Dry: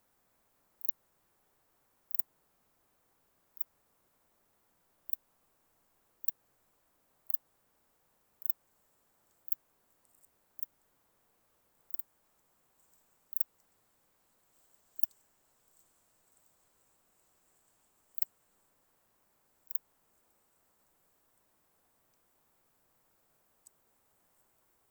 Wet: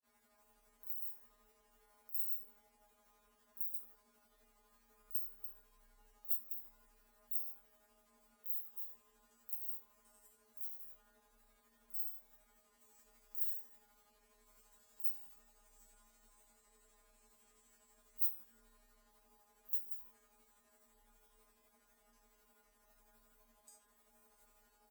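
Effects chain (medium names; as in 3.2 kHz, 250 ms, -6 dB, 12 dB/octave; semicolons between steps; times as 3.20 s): chunks repeated in reverse 160 ms, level -7 dB; feedback comb 200 Hz, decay 0.44 s, harmonics all, mix 100%; granulator 161 ms, grains 12 per s, spray 23 ms, pitch spread up and down by 0 st; frequency shift +32 Hz; doubling 18 ms -13 dB; on a send: feedback echo behind a band-pass 179 ms, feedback 57%, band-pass 460 Hz, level -7 dB; on the sum: trim +17 dB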